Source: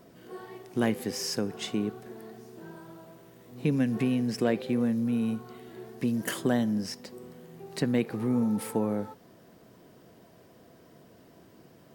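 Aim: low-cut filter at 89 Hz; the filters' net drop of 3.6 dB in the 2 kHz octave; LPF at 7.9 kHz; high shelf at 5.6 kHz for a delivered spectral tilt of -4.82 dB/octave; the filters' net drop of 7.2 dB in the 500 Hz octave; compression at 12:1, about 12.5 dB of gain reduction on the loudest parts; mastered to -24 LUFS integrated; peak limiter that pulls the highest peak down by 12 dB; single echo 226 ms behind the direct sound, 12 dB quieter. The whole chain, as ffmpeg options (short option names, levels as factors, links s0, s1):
-af "highpass=89,lowpass=7900,equalizer=f=500:t=o:g=-9,equalizer=f=2000:t=o:g=-5,highshelf=f=5600:g=8,acompressor=threshold=0.0141:ratio=12,alimiter=level_in=4.73:limit=0.0631:level=0:latency=1,volume=0.211,aecho=1:1:226:0.251,volume=13.3"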